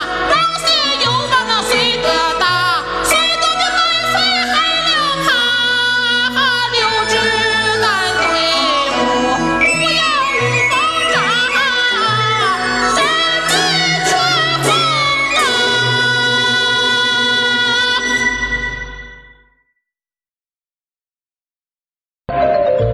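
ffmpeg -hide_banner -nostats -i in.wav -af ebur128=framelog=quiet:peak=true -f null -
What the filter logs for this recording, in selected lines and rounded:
Integrated loudness:
  I:         -12.7 LUFS
  Threshold: -23.0 LUFS
Loudness range:
  LRA:         4.9 LU
  Threshold: -33.2 LUFS
  LRA low:   -17.0 LUFS
  LRA high:  -12.1 LUFS
True peak:
  Peak:       -2.1 dBFS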